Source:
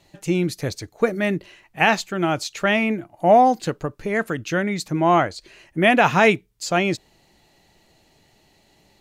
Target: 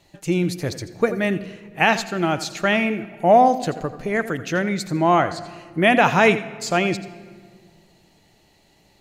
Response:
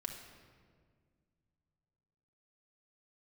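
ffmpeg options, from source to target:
-filter_complex "[0:a]asplit=2[a][b];[1:a]atrim=start_sample=2205,adelay=84[c];[b][c]afir=irnorm=-1:irlink=0,volume=-11dB[d];[a][d]amix=inputs=2:normalize=0"

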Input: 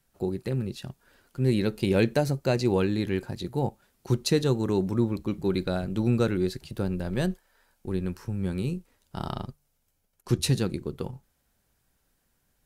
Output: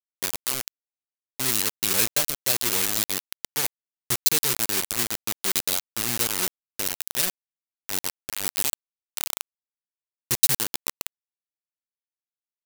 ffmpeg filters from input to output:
-af "acrusher=bits=3:mix=0:aa=0.000001,crystalizer=i=8.5:c=0,aeval=exprs='sgn(val(0))*max(abs(val(0))-0.0596,0)':c=same,volume=-9dB"

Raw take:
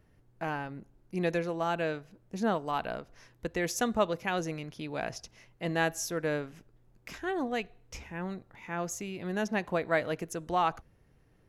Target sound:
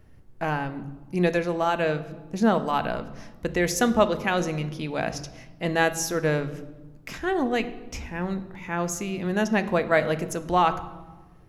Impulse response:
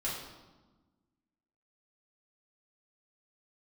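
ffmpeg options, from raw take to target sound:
-filter_complex "[0:a]asplit=2[a][b];[1:a]atrim=start_sample=2205,lowshelf=f=210:g=11.5[c];[b][c]afir=irnorm=-1:irlink=0,volume=-13.5dB[d];[a][d]amix=inputs=2:normalize=0,volume=5.5dB"

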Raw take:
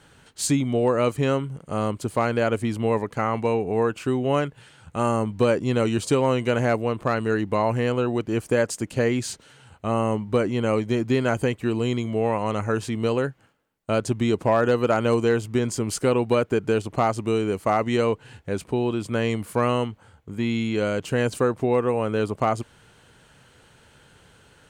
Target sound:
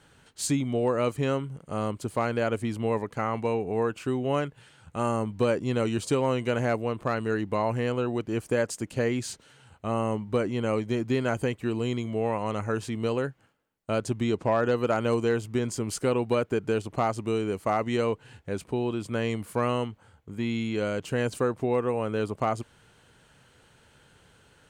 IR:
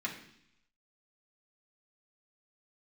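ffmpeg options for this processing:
-filter_complex "[0:a]asettb=1/sr,asplit=3[a][b][c];[a]atrim=end=14.244[d];[b]atrim=start=14.24:end=14.77,asetpts=PTS-STARTPTS,afade=t=in:d=0.004:c=qsin,afade=t=out:st=0.526:d=0.004:c=qsin,lowpass=7.9k[e];[c]atrim=start=14.766[f];[d][e]acrossfade=d=0.004:c1=hsin:c2=qsin[g];[g][f]acrossfade=d=0.004:c1=qsin:c2=hsin,volume=-4.5dB"

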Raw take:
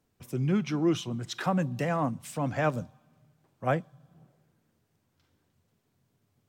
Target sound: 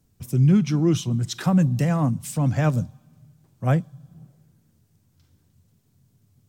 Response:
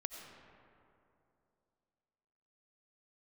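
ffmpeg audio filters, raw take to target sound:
-af "bass=f=250:g=14,treble=f=4k:g=10"

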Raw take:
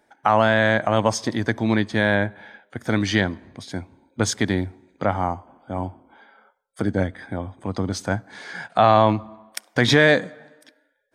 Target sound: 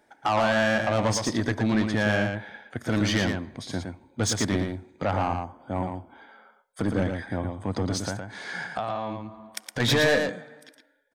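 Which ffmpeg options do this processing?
-filter_complex "[0:a]asettb=1/sr,asplit=3[a][b][c];[a]atrim=end=8.074[d];[b]atrim=start=8.07:end=9.8,asetpts=PTS-STARTPTS,afade=t=in:d=0.004:c=qsin,afade=t=out:st=1.726:d=0.004:c=qsin,acompressor=threshold=-26dB:ratio=12[e];[c]atrim=start=9.796[f];[d][e]acrossfade=d=0.004:c1=hsin:c2=qsin[g];[g][f]acrossfade=d=0.004:c1=qsin:c2=hsin,asoftclip=type=tanh:threshold=-18dB,asplit=2[h][i];[i]aecho=0:1:114:0.531[j];[h][j]amix=inputs=2:normalize=0"

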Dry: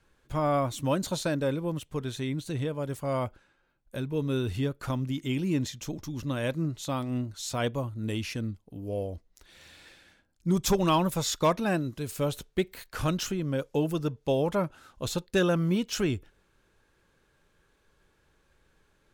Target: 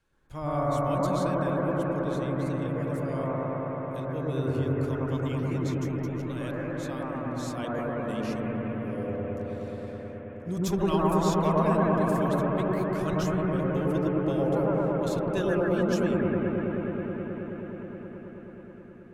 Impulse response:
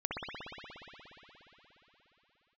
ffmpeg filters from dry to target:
-filter_complex "[0:a]asettb=1/sr,asplit=3[a][b][c];[a]atrim=end=5.424[d];[b]atrim=start=5.42:end=7.16,asetpts=PTS-STARTPTS,afade=t=in:d=0.004:c=qsin,afade=t=out:st=1.736:d=0.004:c=qsin,equalizer=f=170:w=0.86:g=-10.5[e];[c]atrim=start=7.156[f];[d][e]acrossfade=d=0.004:c1=hsin:c2=qsin[g];[g][f]acrossfade=d=0.004:c1=qsin:c2=hsin[h];[1:a]atrim=start_sample=2205,asetrate=24696,aresample=44100[i];[h][i]afir=irnorm=-1:irlink=0,volume=-9dB"

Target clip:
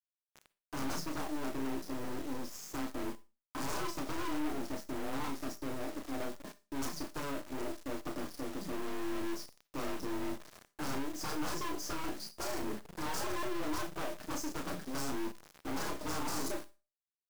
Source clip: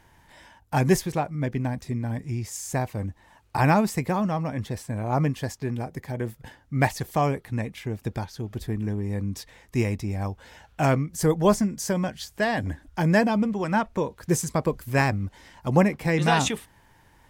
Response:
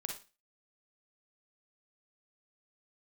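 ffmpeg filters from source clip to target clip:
-filter_complex "[0:a]equalizer=f=200:t=o:w=0.33:g=8,equalizer=f=500:t=o:w=0.33:g=6,equalizer=f=800:t=o:w=0.33:g=-11,equalizer=f=1.6k:t=o:w=0.33:g=6,afreqshift=140,lowpass=f=4.5k:w=0.5412,lowpass=f=4.5k:w=1.3066,aemphasis=mode=production:type=cd,aecho=1:1:6.6:0.36,aeval=exprs='0.0891*(abs(mod(val(0)/0.0891+3,4)-2)-1)':c=same,asuperstop=centerf=2700:order=8:qfactor=0.84,aeval=exprs='(tanh(70.8*val(0)+0.8)-tanh(0.8))/70.8':c=same,aecho=1:1:23|33:0.188|0.531,acrusher=bits=7:mix=0:aa=0.000001,asplit=2[a][b];[1:a]atrim=start_sample=2205,highshelf=f=4.4k:g=10[c];[b][c]afir=irnorm=-1:irlink=0,volume=-11.5dB[d];[a][d]amix=inputs=2:normalize=0,volume=-2.5dB"

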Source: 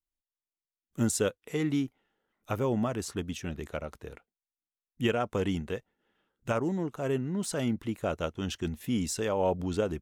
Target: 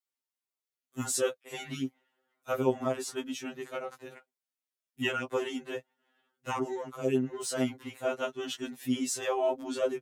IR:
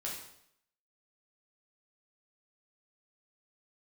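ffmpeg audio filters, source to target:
-af "highpass=260,afftfilt=real='re*2.45*eq(mod(b,6),0)':imag='im*2.45*eq(mod(b,6),0)':win_size=2048:overlap=0.75,volume=3.5dB"

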